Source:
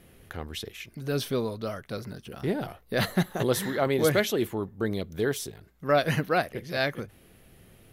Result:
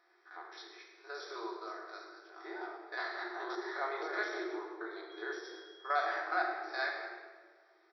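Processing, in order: stepped spectrum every 50 ms; fixed phaser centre 1200 Hz, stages 4; 5.09–6.13 whine 3300 Hz -51 dBFS; shoebox room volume 1500 m³, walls mixed, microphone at 1.9 m; de-esser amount 80%; FFT band-pass 320–5800 Hz; frequency-shifting echo 0.105 s, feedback 43%, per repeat +42 Hz, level -13 dB; gain -3.5 dB

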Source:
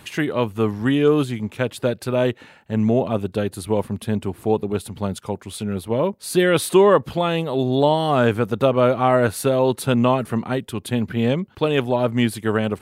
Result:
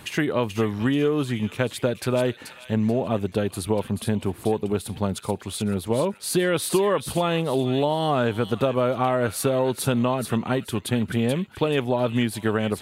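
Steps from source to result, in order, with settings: compressor, threshold -20 dBFS, peak gain reduction 10 dB; thin delay 0.433 s, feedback 31%, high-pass 2200 Hz, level -6 dB; gain +1.5 dB

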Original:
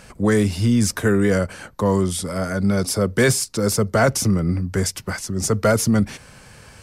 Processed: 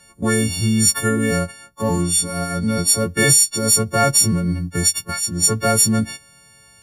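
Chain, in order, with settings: frequency quantiser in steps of 4 st; gate -25 dBFS, range -9 dB; bell 150 Hz +5.5 dB 0.82 oct; gain -3 dB

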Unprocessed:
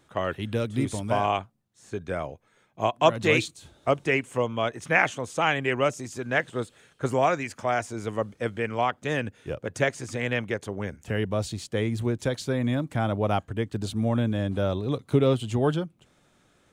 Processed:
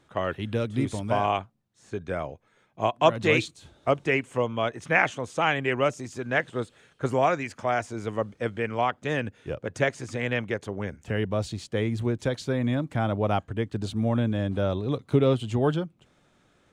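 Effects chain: high shelf 9000 Hz -11.5 dB

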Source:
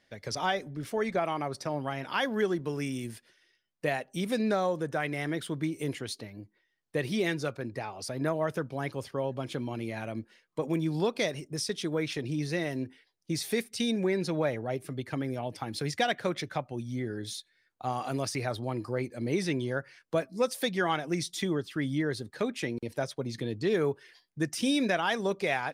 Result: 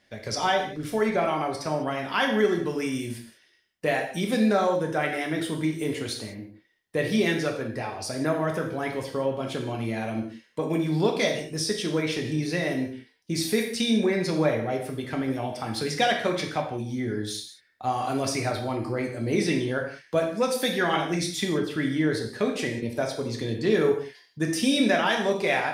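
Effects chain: non-linear reverb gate 0.22 s falling, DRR 1 dB; gain +3 dB

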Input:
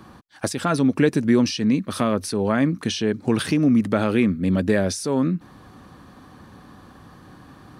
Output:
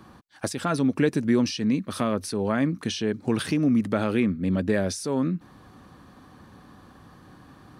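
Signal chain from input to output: 4.2–4.74 high shelf 5300 Hz -5.5 dB; gain -4 dB

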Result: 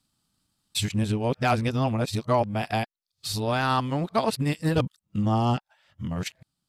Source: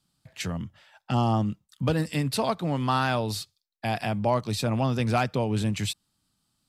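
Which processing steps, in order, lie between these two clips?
whole clip reversed; transient shaper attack +5 dB, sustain -7 dB

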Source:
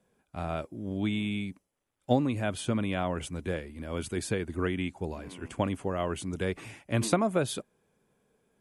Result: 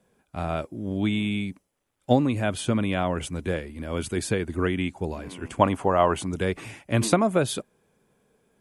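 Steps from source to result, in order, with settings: 5.61–6.27 bell 900 Hz +10.5 dB 1.4 oct; gain +5 dB

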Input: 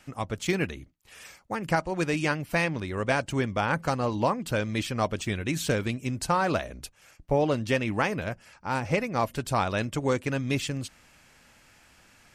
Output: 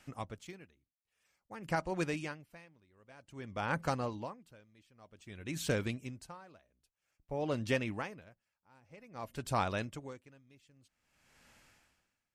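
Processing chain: dB-linear tremolo 0.52 Hz, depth 30 dB; gain -6 dB

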